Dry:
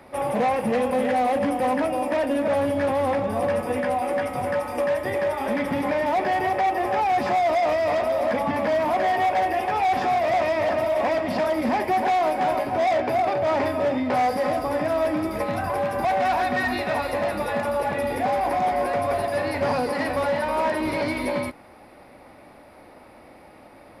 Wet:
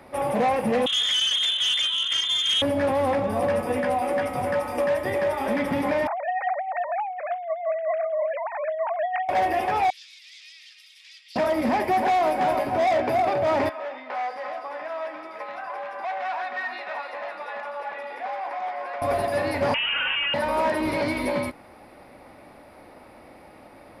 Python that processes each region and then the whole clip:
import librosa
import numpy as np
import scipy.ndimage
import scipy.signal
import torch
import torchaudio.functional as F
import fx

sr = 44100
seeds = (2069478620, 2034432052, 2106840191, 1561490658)

y = fx.chain(x, sr, fx.freq_invert(carrier_hz=3800),
    fx.transformer_sat(knee_hz=2700.0), at=(0.86, 2.62))
y = fx.chain(y, sr, fx.sine_speech(),
    fx.highpass(hz=430.0, slope=12),
    fx.over_compress(threshold_db=-27.0, ratio=-1.0), at=(6.07, 9.29))
y = fx.chain(y, sr, fx.cheby2_highpass(hz=780.0, order=4, stop_db=70),
    fx.air_absorb(metres=69.0), at=(9.9, 11.36))
y = fx.chain(y, sr, fx.highpass(hz=960.0, slope=12),
    fx.spacing_loss(db_at_10k=23), at=(13.69, 19.02))
y = fx.chain(y, sr, fx.highpass(hz=770.0, slope=6),
    fx.freq_invert(carrier_hz=3400),
    fx.env_flatten(amount_pct=100), at=(19.74, 20.34))